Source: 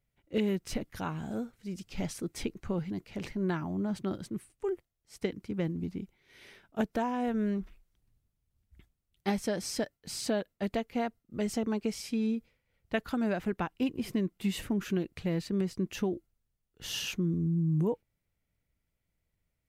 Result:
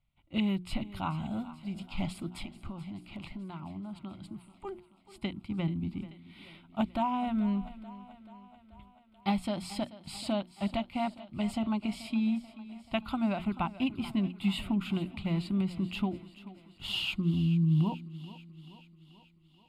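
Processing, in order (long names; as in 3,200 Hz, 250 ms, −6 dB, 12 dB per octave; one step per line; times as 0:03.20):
low-pass filter 7,700 Hz 12 dB per octave
mains-hum notches 60/120/180/240/300/360 Hz
0:02.37–0:04.65: downward compressor, threshold −40 dBFS, peak gain reduction 11.5 dB
phaser with its sweep stopped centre 1,700 Hz, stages 6
feedback echo with a high-pass in the loop 434 ms, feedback 63%, high-pass 160 Hz, level −16 dB
level +4.5 dB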